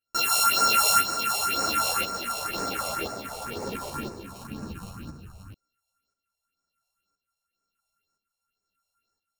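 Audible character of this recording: a buzz of ramps at a fixed pitch in blocks of 32 samples; phasing stages 4, 2 Hz, lowest notch 270–3100 Hz; tremolo saw up 0.98 Hz, depth 60%; a shimmering, thickened sound

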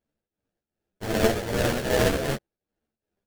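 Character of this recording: a buzz of ramps at a fixed pitch in blocks of 16 samples; tremolo triangle 2.6 Hz, depth 75%; aliases and images of a low sample rate 1.1 kHz, jitter 20%; a shimmering, thickened sound

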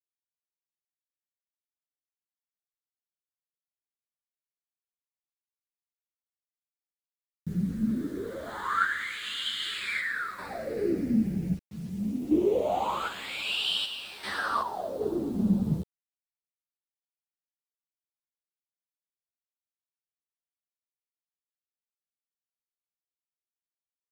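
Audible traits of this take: phasing stages 8, 0.084 Hz, lowest notch 760–2200 Hz; random-step tremolo 2.6 Hz, depth 75%; a quantiser's noise floor 10-bit, dither none; a shimmering, thickened sound

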